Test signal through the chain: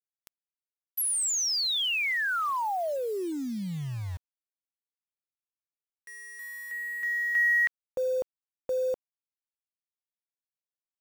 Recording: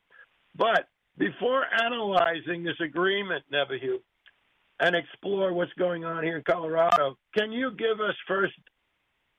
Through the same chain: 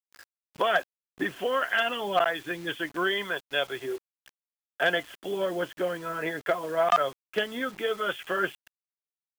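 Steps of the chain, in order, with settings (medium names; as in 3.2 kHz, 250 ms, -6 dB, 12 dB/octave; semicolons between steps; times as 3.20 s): bass shelf 420 Hz -6.5 dB; bit crusher 8-bit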